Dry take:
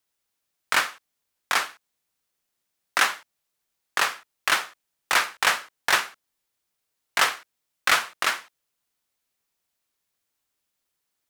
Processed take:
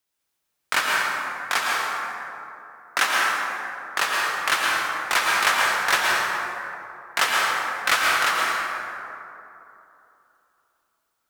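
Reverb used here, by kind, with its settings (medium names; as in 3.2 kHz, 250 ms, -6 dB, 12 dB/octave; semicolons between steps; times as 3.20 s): plate-style reverb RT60 3 s, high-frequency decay 0.4×, pre-delay 100 ms, DRR -3.5 dB; trim -1 dB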